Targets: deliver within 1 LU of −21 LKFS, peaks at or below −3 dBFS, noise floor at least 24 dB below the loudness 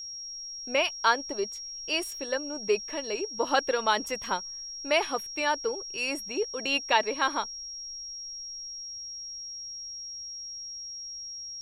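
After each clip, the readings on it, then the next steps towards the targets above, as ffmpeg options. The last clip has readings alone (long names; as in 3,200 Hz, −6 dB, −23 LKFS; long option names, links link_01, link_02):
interfering tone 5,600 Hz; level of the tone −37 dBFS; integrated loudness −30.0 LKFS; sample peak −9.0 dBFS; target loudness −21.0 LKFS
→ -af "bandreject=frequency=5600:width=30"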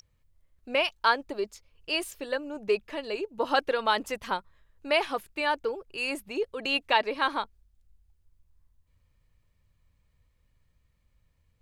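interfering tone none found; integrated loudness −29.0 LKFS; sample peak −9.0 dBFS; target loudness −21.0 LKFS
→ -af "volume=8dB,alimiter=limit=-3dB:level=0:latency=1"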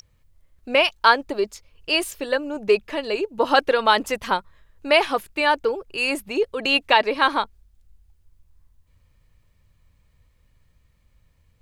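integrated loudness −21.0 LKFS; sample peak −3.0 dBFS; background noise floor −62 dBFS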